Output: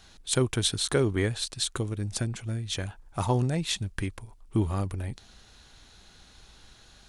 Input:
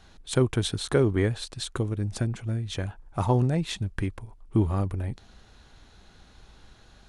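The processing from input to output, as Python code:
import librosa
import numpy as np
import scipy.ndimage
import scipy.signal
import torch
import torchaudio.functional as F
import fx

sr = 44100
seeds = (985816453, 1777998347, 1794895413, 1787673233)

y = fx.high_shelf(x, sr, hz=2400.0, db=10.5)
y = y * librosa.db_to_amplitude(-3.0)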